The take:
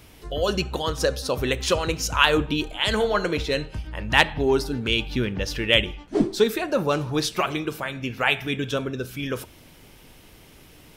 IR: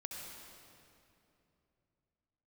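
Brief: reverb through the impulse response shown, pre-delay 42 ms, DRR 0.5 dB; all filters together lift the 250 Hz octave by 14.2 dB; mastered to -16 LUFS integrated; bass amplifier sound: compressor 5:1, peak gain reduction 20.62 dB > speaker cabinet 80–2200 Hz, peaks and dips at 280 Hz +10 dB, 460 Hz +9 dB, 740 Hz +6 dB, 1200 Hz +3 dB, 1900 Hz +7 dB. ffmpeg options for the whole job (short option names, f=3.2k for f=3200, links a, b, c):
-filter_complex "[0:a]equalizer=f=250:t=o:g=8.5,asplit=2[a][b];[1:a]atrim=start_sample=2205,adelay=42[c];[b][c]afir=irnorm=-1:irlink=0,volume=1dB[d];[a][d]amix=inputs=2:normalize=0,acompressor=threshold=-30dB:ratio=5,highpass=f=80:w=0.5412,highpass=f=80:w=1.3066,equalizer=f=280:t=q:w=4:g=10,equalizer=f=460:t=q:w=4:g=9,equalizer=f=740:t=q:w=4:g=6,equalizer=f=1.2k:t=q:w=4:g=3,equalizer=f=1.9k:t=q:w=4:g=7,lowpass=f=2.2k:w=0.5412,lowpass=f=2.2k:w=1.3066,volume=10.5dB"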